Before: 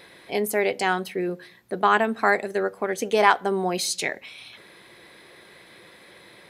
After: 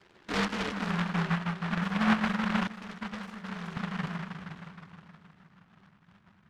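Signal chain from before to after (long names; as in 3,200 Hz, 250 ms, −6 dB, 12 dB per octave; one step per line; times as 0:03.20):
partials spread apart or drawn together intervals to 124%
brick-wall band-stop 1,100–2,700 Hz
noise gate −52 dBFS, range −15 dB
downward compressor 2 to 1, threshold −48 dBFS, peak gain reduction 15.5 dB
parametric band 220 Hz +7 dB 0.32 octaves
on a send: echo machine with several playback heads 157 ms, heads all three, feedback 50%, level −10.5 dB
on the sum: low-pass filter sweep 410 Hz → 180 Hz, 0:00.15–0:01.26
0:02.67–0:03.77: meter weighting curve A
short delay modulated by noise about 1,200 Hz, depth 0.46 ms
level +9 dB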